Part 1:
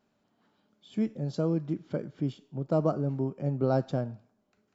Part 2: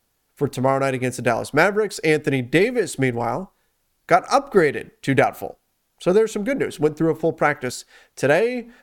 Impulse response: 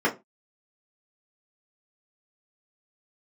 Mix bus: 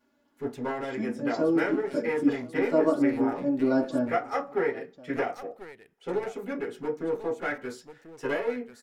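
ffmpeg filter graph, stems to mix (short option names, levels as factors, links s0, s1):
-filter_complex "[0:a]aecho=1:1:3.5:0.79,volume=0.891,asplit=4[s0][s1][s2][s3];[s1]volume=0.224[s4];[s2]volume=0.126[s5];[1:a]aeval=exprs='clip(val(0),-1,0.0794)':c=same,volume=0.141,asplit=3[s6][s7][s8];[s7]volume=0.447[s9];[s8]volume=0.447[s10];[s3]apad=whole_len=389187[s11];[s6][s11]sidechaincompress=threshold=0.00224:ratio=8:attack=16:release=1320[s12];[2:a]atrim=start_sample=2205[s13];[s4][s9]amix=inputs=2:normalize=0[s14];[s14][s13]afir=irnorm=-1:irlink=0[s15];[s5][s10]amix=inputs=2:normalize=0,aecho=0:1:1046:1[s16];[s0][s12][s15][s16]amix=inputs=4:normalize=0,lowshelf=f=370:g=-5"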